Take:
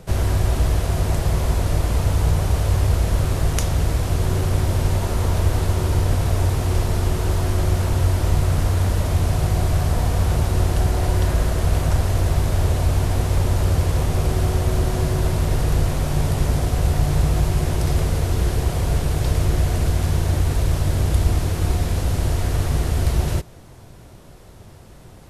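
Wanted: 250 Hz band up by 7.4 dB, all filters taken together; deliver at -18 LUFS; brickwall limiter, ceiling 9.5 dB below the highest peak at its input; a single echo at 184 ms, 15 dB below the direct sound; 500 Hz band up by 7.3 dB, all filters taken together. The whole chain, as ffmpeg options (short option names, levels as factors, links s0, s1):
-af "equalizer=f=250:t=o:g=9,equalizer=f=500:t=o:g=6.5,alimiter=limit=0.299:level=0:latency=1,aecho=1:1:184:0.178,volume=1.33"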